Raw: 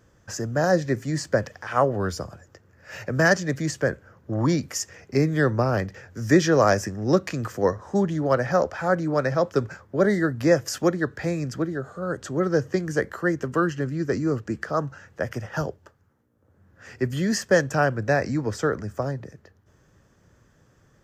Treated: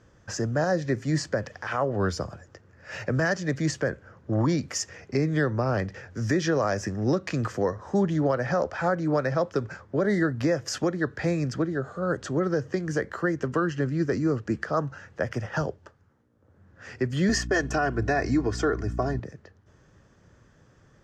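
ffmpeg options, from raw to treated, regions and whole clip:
ffmpeg -i in.wav -filter_complex "[0:a]asettb=1/sr,asplit=3[link_01][link_02][link_03];[link_01]atrim=end=17.294[link_04];[link_02]atrim=start=17.29:end=19.2,asetpts=PTS-STARTPTS,afade=type=in:duration=0.004:curve=qsin,afade=type=out:start_time=1.906:duration=0.004:curve=qsin,agate=range=-33dB:threshold=-40dB:ratio=3:release=100:detection=peak,aecho=1:1:2.8:0.98,atrim=end_sample=84231,aeval=exprs='val(0)+0.0251*(sin(2*PI*60*n/s)+sin(2*PI*2*60*n/s)/2+sin(2*PI*3*60*n/s)/3+sin(2*PI*4*60*n/s)/4+sin(2*PI*5*60*n/s)/5)':channel_layout=same[link_05];[link_03]atrim=start=19.196[link_06];[link_04][link_05]acrossfade=duration=0.004:curve1=hsin:curve2=qsin[link_07];[link_07][link_06]acrossfade=duration=0.004:curve1=qsin:curve2=hsin,lowpass=6500,alimiter=limit=-16.5dB:level=0:latency=1:release=205,volume=1.5dB" out.wav

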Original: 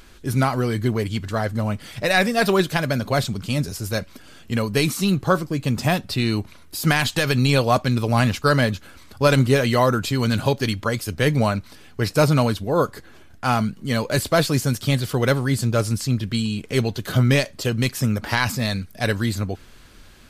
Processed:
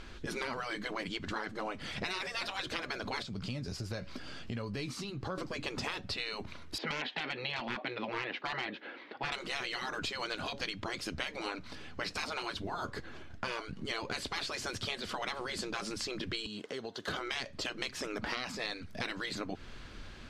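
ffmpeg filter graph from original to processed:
ffmpeg -i in.wav -filter_complex "[0:a]asettb=1/sr,asplit=3[link_01][link_02][link_03];[link_01]atrim=end=3.224[link_04];[link_02]atrim=start=3.22:end=5.38,asetpts=PTS-STARTPTS,afade=type=in:duration=0.004:curve=qsin,afade=type=out:start_time=2.156:duration=0.004:curve=qsin,equalizer=frequency=4800:width=7.2:gain=6.5,asplit=2[link_05][link_06];[link_06]adelay=16,volume=-11.5dB[link_07];[link_05][link_07]amix=inputs=2:normalize=0,atrim=end_sample=95256,acompressor=threshold=-34dB:ratio=4:attack=3.2:release=140:knee=1:detection=peak[link_08];[link_03]atrim=start=5.376[link_09];[link_04][link_08]acrossfade=duration=0.004:curve1=hsin:curve2=qsin[link_10];[link_10][link_09]acrossfade=duration=0.004:curve1=qsin:curve2=hsin,asettb=1/sr,asplit=3[link_11][link_12][link_13];[link_11]atrim=end=6.784[link_14];[link_12]atrim=start=6.78:end=9.32,asetpts=PTS-STARTPTS,afade=type=in:duration=0.004:curve=qsin,afade=type=out:start_time=2.536:duration=0.004:curve=qsin,highpass=frequency=270:width=0.5412,highpass=frequency=270:width=1.3066,equalizer=frequency=340:width_type=q:width=4:gain=4,equalizer=frequency=490:width_type=q:width=4:gain=5,equalizer=frequency=800:width_type=q:width=4:gain=4,equalizer=frequency=1200:width_type=q:width=4:gain=-5,equalizer=frequency=1900:width_type=q:width=4:gain=6,lowpass=frequency=3500:width=0.5412,lowpass=frequency=3500:width=1.3066,asoftclip=type=hard:threshold=-11dB[link_15];[link_13]atrim=start=9.316[link_16];[link_14][link_15]acrossfade=duration=0.004:curve1=hsin:curve2=qsin[link_17];[link_17][link_16]acrossfade=duration=0.004:curve1=qsin:curve2=hsin,asettb=1/sr,asplit=3[link_18][link_19][link_20];[link_18]atrim=end=16.464[link_21];[link_19]atrim=start=16.46:end=17.08,asetpts=PTS-STARTPTS,afade=type=in:duration=0.004:curve=qsin,afade=type=out:start_time=0.616:duration=0.004:curve=qsin,highpass=400,equalizer=frequency=2400:width_type=o:width=0.23:gain=-14.5,acompressor=threshold=-36dB:ratio=6:attack=3.2:release=140:knee=1:detection=peak[link_22];[link_20]atrim=start=17.076[link_23];[link_21][link_22]acrossfade=duration=0.004:curve1=hsin:curve2=qsin[link_24];[link_24][link_23]acrossfade=duration=0.004:curve1=qsin:curve2=hsin,lowpass=4800,afftfilt=real='re*lt(hypot(re,im),0.224)':imag='im*lt(hypot(re,im),0.224)':win_size=1024:overlap=0.75,acompressor=threshold=-34dB:ratio=6" out.wav

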